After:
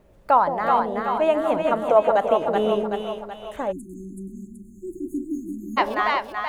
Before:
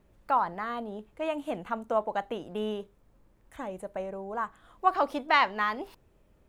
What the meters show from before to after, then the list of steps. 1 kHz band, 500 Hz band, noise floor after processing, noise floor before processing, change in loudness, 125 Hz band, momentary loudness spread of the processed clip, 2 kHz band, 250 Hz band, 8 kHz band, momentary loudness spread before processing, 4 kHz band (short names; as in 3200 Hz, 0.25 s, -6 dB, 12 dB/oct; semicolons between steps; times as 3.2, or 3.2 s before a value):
+7.0 dB, +12.0 dB, -47 dBFS, -64 dBFS, +8.5 dB, +9.0 dB, 18 LU, +2.5 dB, +9.0 dB, n/a, 15 LU, +3.0 dB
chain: bell 570 Hz +7 dB 0.9 oct; split-band echo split 640 Hz, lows 0.17 s, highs 0.378 s, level -3 dB; spectral delete 3.72–5.78, 370–6300 Hz; gain +6 dB